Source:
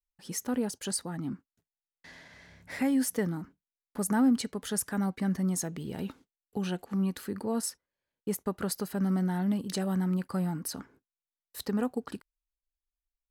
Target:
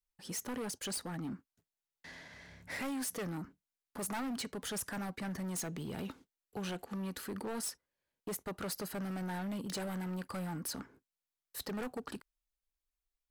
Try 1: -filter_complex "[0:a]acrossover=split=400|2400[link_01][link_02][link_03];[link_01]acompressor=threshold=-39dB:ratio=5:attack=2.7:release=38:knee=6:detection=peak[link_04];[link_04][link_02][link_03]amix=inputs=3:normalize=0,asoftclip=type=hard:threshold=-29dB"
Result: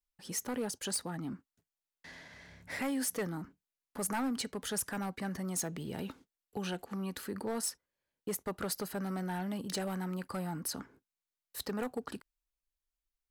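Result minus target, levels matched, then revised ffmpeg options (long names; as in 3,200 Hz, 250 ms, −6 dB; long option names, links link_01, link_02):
hard clipping: distortion −7 dB
-filter_complex "[0:a]acrossover=split=400|2400[link_01][link_02][link_03];[link_01]acompressor=threshold=-39dB:ratio=5:attack=2.7:release=38:knee=6:detection=peak[link_04];[link_04][link_02][link_03]amix=inputs=3:normalize=0,asoftclip=type=hard:threshold=-35.5dB"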